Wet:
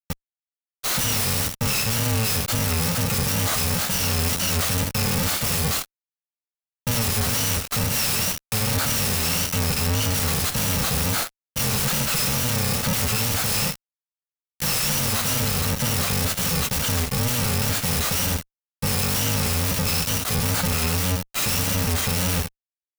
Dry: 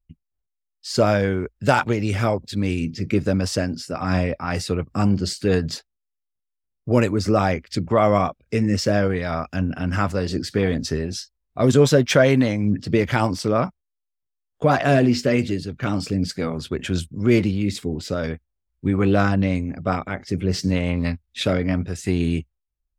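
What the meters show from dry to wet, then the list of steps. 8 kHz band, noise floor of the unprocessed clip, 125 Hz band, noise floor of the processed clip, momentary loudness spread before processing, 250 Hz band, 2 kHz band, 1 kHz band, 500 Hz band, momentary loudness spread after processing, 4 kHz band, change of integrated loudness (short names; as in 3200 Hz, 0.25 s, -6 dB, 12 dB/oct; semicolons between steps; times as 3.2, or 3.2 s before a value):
+13.5 dB, -81 dBFS, -1.5 dB, under -85 dBFS, 10 LU, -8.0 dB, +0.5 dB, -3.5 dB, -10.5 dB, 3 LU, +7.5 dB, 0.0 dB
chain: FFT order left unsorted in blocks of 128 samples; in parallel at 0 dB: limiter -11.5 dBFS, peak gain reduction 9 dB; on the sum: compressor 2.5:1, threshold -15 dBFS, peak gain reduction 6.5 dB; wow and flutter 110 cents; on a send: echo 79 ms -17.5 dB; on the sum: fuzz box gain 42 dB, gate -40 dBFS; clock jitter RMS 0.024 ms; gain -6.5 dB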